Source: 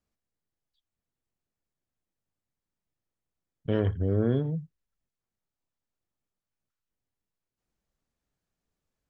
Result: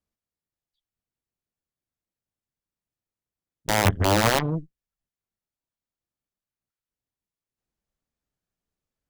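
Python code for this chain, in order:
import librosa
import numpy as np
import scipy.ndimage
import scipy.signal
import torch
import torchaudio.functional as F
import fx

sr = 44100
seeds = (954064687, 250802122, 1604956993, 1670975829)

y = (np.mod(10.0 ** (18.5 / 20.0) * x + 1.0, 2.0) - 1.0) / 10.0 ** (18.5 / 20.0)
y = fx.cheby_harmonics(y, sr, harmonics=(4, 6, 7), levels_db=(-7, -8, -21), full_scale_db=-18.5)
y = y * librosa.db_to_amplitude(5.0)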